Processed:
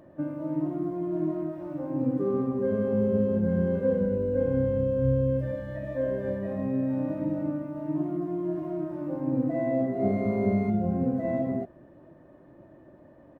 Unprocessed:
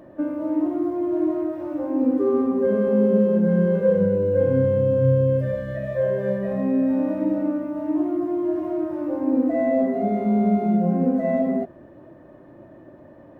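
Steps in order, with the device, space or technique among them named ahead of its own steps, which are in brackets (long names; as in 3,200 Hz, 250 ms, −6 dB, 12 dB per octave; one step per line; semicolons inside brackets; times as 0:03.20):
0:09.96–0:10.70: flutter between parallel walls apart 5.2 metres, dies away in 0.66 s
octave pedal (pitch-shifted copies added −12 semitones −9 dB)
level −7 dB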